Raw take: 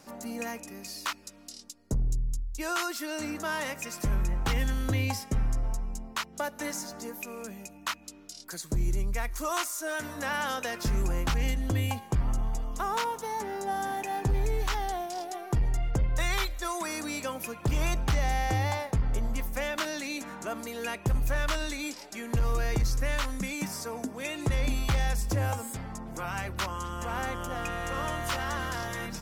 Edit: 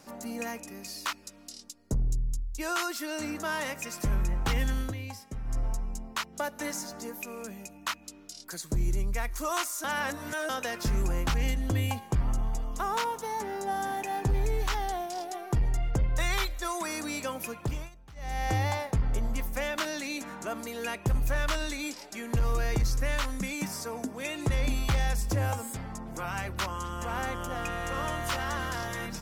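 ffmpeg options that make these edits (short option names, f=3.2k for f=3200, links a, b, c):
-filter_complex "[0:a]asplit=7[a][b][c][d][e][f][g];[a]atrim=end=4.94,asetpts=PTS-STARTPTS,afade=t=out:st=4.8:d=0.14:silence=0.316228[h];[b]atrim=start=4.94:end=5.44,asetpts=PTS-STARTPTS,volume=-10dB[i];[c]atrim=start=5.44:end=9.842,asetpts=PTS-STARTPTS,afade=t=in:d=0.14:silence=0.316228[j];[d]atrim=start=9.838:end=10.492,asetpts=PTS-STARTPTS,areverse[k];[e]atrim=start=10.488:end=17.9,asetpts=PTS-STARTPTS,afade=t=out:st=7.052:d=0.36:silence=0.0630957[l];[f]atrim=start=17.9:end=18.15,asetpts=PTS-STARTPTS,volume=-24dB[m];[g]atrim=start=18.15,asetpts=PTS-STARTPTS,afade=t=in:d=0.36:silence=0.0630957[n];[h][i][j]concat=n=3:v=0:a=1[o];[o][k]acrossfade=d=0.004:c1=hsin:c2=hsin[p];[l][m][n]concat=n=3:v=0:a=1[q];[p][q]acrossfade=d=0.004:c1=hsin:c2=hsin"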